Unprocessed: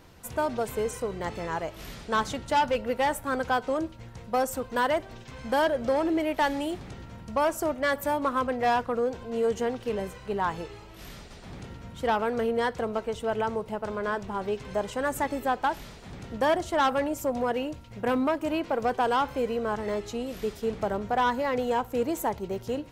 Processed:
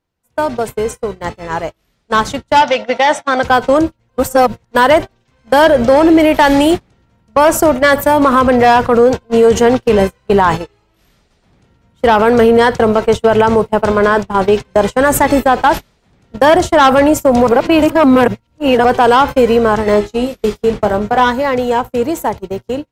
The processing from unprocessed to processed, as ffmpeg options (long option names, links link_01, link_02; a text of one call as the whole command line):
ffmpeg -i in.wav -filter_complex "[0:a]asettb=1/sr,asplit=3[link_01][link_02][link_03];[link_01]atrim=end=2.624[link_04];[link_02]atrim=start=2.62:end=3.43,asetpts=PTS-STARTPTS,afade=type=in:duration=0.004:curve=qsin,afade=type=out:start_time=0.806:duration=0.004:curve=qsin,highpass=270,equalizer=frequency=440:width_type=q:width=4:gain=-7,equalizer=frequency=700:width_type=q:width=4:gain=9,equalizer=frequency=2100:width_type=q:width=4:gain=6,equalizer=frequency=3500:width_type=q:width=4:gain=8,equalizer=frequency=5800:width_type=q:width=4:gain=8,lowpass=frequency=7000:width=0.5412,lowpass=frequency=7000:width=1.3066[link_05];[link_03]atrim=start=3.426[link_06];[link_04][link_05]acrossfade=duration=0.004:curve1=hsin:curve2=qsin[link_07];[link_07][link_06]acrossfade=duration=0.004:curve1=qsin:curve2=hsin,asettb=1/sr,asplit=3[link_08][link_09][link_10];[link_08]atrim=end=19.904[link_11];[link_09]atrim=start=19.9:end=21.32,asetpts=PTS-STARTPTS,afade=type=in:duration=0.004:curve=qsin,afade=type=out:start_time=1.416:duration=0.004:curve=qsin,asplit=2[link_12][link_13];[link_13]adelay=24,volume=-8dB[link_14];[link_12][link_14]amix=inputs=2:normalize=0,atrim=end_sample=62622[link_15];[link_10]atrim=start=21.316[link_16];[link_11][link_15]acrossfade=duration=0.004:curve1=hsin:curve2=qsin[link_17];[link_17][link_16]acrossfade=duration=0.004:curve1=qsin:curve2=hsin,asplit=5[link_18][link_19][link_20][link_21][link_22];[link_18]atrim=end=4.092[link_23];[link_19]atrim=start=4.088:end=4.712,asetpts=PTS-STARTPTS,areverse[link_24];[link_20]atrim=start=4.708:end=17.472[link_25];[link_21]atrim=start=17.468:end=18.842,asetpts=PTS-STARTPTS,areverse[link_26];[link_22]atrim=start=18.838[link_27];[link_23][link_24]acrossfade=duration=0.004:curve1=hsin:curve2=hsin[link_28];[link_28][link_25]acrossfade=duration=0.004:curve1=hsin:curve2=hsin[link_29];[link_29][link_26]acrossfade=duration=0.004:curve1=hsin:curve2=hsin[link_30];[link_30][link_27]acrossfade=duration=0.004:curve1=hsin:curve2=hsin,agate=range=-34dB:threshold=-32dB:ratio=16:detection=peak,dynaudnorm=framelen=350:gausssize=21:maxgain=12dB,alimiter=level_in=12.5dB:limit=-1dB:release=50:level=0:latency=1,volume=-1dB" out.wav